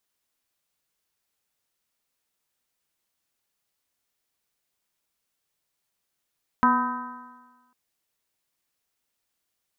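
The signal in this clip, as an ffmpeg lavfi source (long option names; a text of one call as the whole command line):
ffmpeg -f lavfi -i "aevalsrc='0.0944*pow(10,-3*t/1.3)*sin(2*PI*244.4*t)+0.0126*pow(10,-3*t/1.3)*sin(2*PI*491.21*t)+0.0237*pow(10,-3*t/1.3)*sin(2*PI*742.79*t)+0.15*pow(10,-3*t/1.3)*sin(2*PI*1001.43*t)+0.0891*pow(10,-3*t/1.3)*sin(2*PI*1269.33*t)+0.0501*pow(10,-3*t/1.3)*sin(2*PI*1548.52*t)+0.01*pow(10,-3*t/1.3)*sin(2*PI*1840.92*t)':duration=1.1:sample_rate=44100" out.wav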